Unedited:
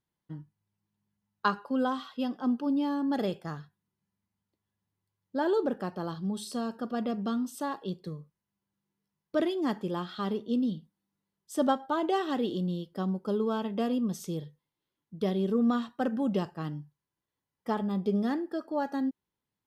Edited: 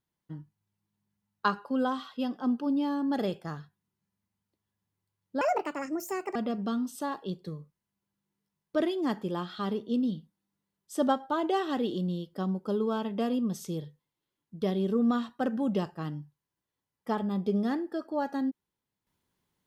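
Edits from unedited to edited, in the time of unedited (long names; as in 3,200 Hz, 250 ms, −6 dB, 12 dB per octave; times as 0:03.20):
0:05.41–0:06.95: play speed 163%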